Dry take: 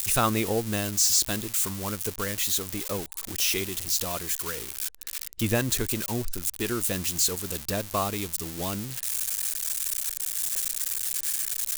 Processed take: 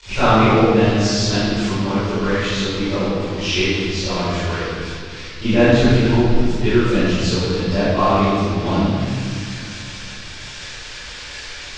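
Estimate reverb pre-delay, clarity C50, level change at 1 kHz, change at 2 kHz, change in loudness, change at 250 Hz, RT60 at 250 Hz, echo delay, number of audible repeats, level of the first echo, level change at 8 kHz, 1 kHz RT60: 22 ms, -5.5 dB, +13.0 dB, +11.5 dB, +8.5 dB, +15.5 dB, 3.2 s, none, none, none, -7.5 dB, 1.8 s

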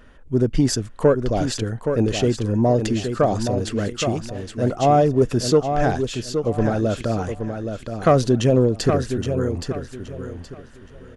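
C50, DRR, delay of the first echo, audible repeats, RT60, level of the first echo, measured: none, none, 0.821 s, 3, none, -7.0 dB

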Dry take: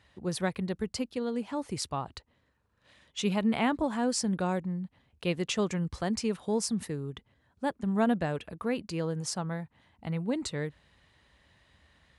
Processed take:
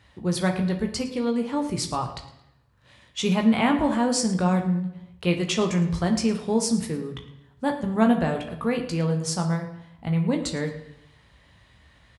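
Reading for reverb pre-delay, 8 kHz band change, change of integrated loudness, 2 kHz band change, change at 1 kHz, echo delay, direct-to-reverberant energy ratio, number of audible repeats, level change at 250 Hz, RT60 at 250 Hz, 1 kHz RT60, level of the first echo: 17 ms, +6.0 dB, +7.0 dB, +6.0 dB, +6.5 dB, 0.11 s, 3.0 dB, 1, +7.5 dB, 1.0 s, 0.80 s, -16.5 dB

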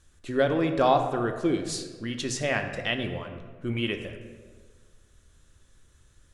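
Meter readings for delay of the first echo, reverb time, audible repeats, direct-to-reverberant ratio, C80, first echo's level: none, 1.5 s, none, 5.0 dB, 9.5 dB, none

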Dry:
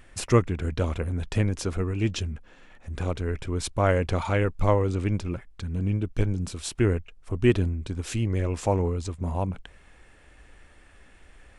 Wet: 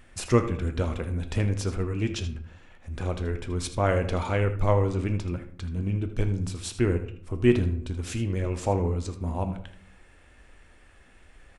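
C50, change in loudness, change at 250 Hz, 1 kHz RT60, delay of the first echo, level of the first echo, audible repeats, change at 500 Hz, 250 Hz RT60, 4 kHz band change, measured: 10.0 dB, -1.0 dB, -0.5 dB, 0.60 s, 79 ms, -13.0 dB, 1, -0.5 dB, 0.85 s, -1.5 dB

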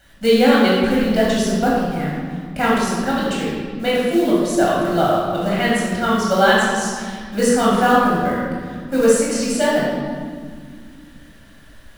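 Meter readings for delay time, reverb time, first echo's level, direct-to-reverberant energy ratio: none, 1.9 s, none, -6.0 dB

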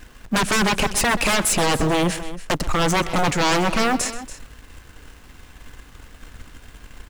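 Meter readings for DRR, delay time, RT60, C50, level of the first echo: none, 0.128 s, none, none, -16.0 dB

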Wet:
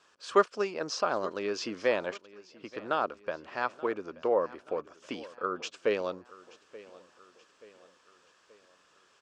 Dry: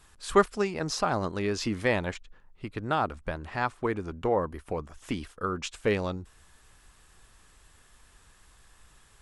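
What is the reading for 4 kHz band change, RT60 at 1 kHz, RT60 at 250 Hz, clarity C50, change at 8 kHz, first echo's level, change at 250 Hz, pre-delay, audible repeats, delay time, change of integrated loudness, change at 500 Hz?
-2.5 dB, none, none, none, -5.5 dB, -20.0 dB, -6.5 dB, none, 3, 0.879 s, -2.0 dB, -0.5 dB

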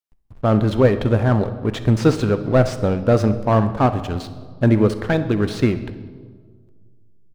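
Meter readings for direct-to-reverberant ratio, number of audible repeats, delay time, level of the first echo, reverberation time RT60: 10.0 dB, 2, 66 ms, -18.5 dB, 1.7 s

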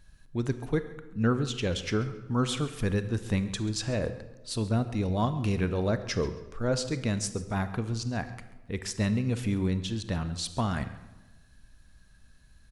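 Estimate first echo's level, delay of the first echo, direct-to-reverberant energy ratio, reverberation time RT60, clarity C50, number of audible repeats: -18.5 dB, 0.136 s, 10.5 dB, 1.1 s, 11.5 dB, 2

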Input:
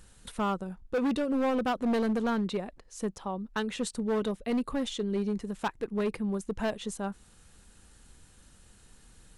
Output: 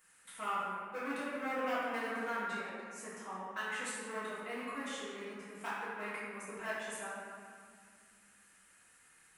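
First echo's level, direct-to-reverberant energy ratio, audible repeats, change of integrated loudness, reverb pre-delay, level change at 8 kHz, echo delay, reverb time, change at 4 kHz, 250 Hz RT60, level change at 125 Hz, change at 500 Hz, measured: none, -11.0 dB, none, -8.5 dB, 3 ms, -3.5 dB, none, 2.0 s, -7.5 dB, 3.1 s, -18.5 dB, -10.5 dB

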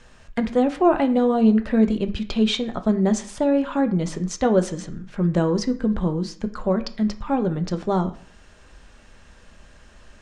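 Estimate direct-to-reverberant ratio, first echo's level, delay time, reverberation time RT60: 7.0 dB, none, none, 0.50 s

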